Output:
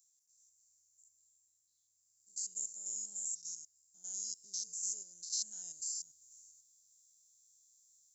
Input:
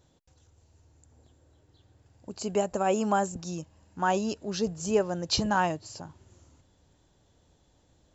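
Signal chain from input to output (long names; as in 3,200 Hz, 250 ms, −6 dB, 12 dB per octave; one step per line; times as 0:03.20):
spectrum averaged block by block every 100 ms
inverse Chebyshev high-pass filter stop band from 2,700 Hz, stop band 50 dB
speech leveller 0.5 s
level +10 dB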